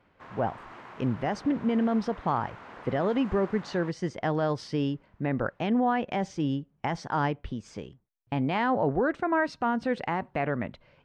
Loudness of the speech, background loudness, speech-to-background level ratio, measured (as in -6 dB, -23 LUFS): -29.0 LUFS, -46.5 LUFS, 17.5 dB